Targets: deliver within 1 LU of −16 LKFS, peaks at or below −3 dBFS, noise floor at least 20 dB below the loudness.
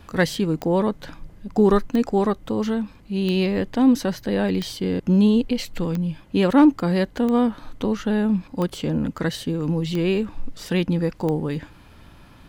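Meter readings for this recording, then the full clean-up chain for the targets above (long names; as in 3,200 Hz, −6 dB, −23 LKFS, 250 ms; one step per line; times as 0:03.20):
number of clicks 9; integrated loudness −22.0 LKFS; sample peak −6.5 dBFS; target loudness −16.0 LKFS
→ click removal
level +6 dB
brickwall limiter −3 dBFS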